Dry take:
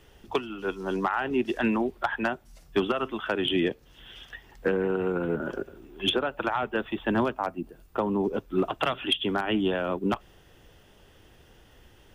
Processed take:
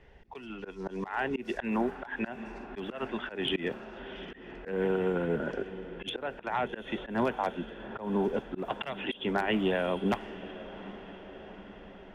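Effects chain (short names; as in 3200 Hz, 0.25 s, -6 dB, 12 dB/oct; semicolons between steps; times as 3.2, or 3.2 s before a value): thirty-one-band EQ 100 Hz -10 dB, 315 Hz -7 dB, 1250 Hz -8 dB, 2000 Hz +5 dB, 3150 Hz -5 dB; diffused feedback echo 0.792 s, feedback 63%, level -15.5 dB; low-pass opened by the level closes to 2400 Hz, open at -23.5 dBFS; auto swell 0.171 s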